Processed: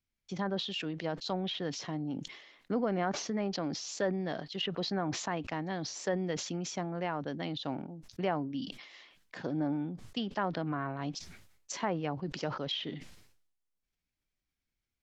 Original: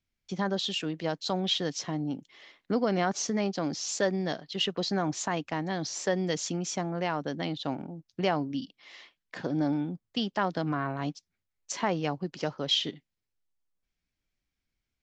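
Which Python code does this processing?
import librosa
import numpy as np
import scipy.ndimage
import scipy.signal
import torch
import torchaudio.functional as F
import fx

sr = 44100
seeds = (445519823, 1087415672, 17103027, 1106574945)

y = fx.env_lowpass_down(x, sr, base_hz=2200.0, full_db=-24.5)
y = fx.sustainer(y, sr, db_per_s=66.0)
y = y * librosa.db_to_amplitude(-4.5)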